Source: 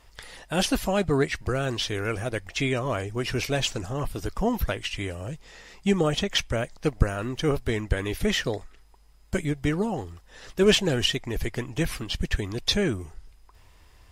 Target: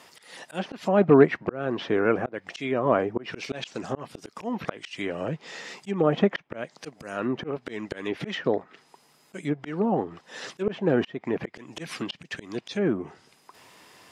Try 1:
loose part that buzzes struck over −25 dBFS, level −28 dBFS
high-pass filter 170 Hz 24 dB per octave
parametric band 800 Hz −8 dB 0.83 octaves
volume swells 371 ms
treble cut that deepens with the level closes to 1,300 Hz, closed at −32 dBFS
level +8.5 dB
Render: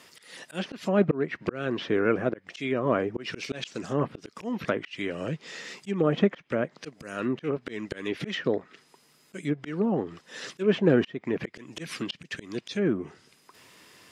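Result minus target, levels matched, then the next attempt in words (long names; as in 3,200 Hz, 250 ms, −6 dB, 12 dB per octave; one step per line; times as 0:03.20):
1,000 Hz band −3.0 dB
loose part that buzzes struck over −25 dBFS, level −28 dBFS
high-pass filter 170 Hz 24 dB per octave
volume swells 371 ms
treble cut that deepens with the level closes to 1,300 Hz, closed at −32 dBFS
level +8.5 dB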